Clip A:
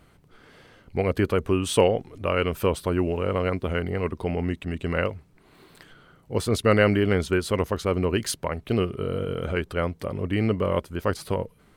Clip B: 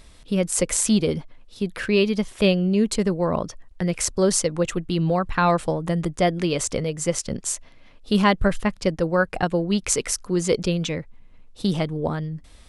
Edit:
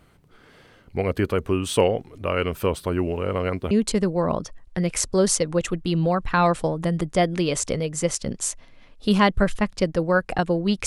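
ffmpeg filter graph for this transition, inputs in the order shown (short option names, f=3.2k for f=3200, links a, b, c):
-filter_complex "[0:a]apad=whole_dur=10.86,atrim=end=10.86,atrim=end=3.712[a];[1:a]atrim=start=2.748:end=9.9[b];[a][b]acrossfade=d=0.004:c1=hsin:c2=hsin"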